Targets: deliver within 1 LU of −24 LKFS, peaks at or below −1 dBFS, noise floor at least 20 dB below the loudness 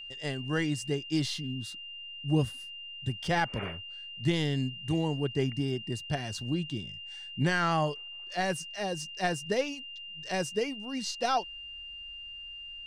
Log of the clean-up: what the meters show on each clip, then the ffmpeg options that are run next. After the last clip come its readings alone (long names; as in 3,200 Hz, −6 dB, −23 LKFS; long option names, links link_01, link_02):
interfering tone 2,800 Hz; level of the tone −41 dBFS; integrated loudness −32.5 LKFS; sample peak −16.0 dBFS; target loudness −24.0 LKFS
→ -af "bandreject=frequency=2800:width=30"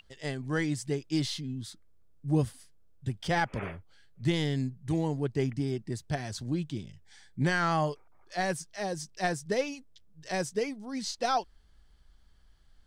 interfering tone none found; integrated loudness −32.0 LKFS; sample peak −15.5 dBFS; target loudness −24.0 LKFS
→ -af "volume=8dB"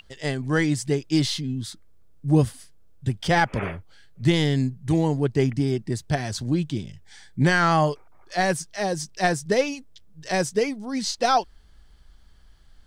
integrated loudness −24.0 LKFS; sample peak −7.5 dBFS; background noise floor −51 dBFS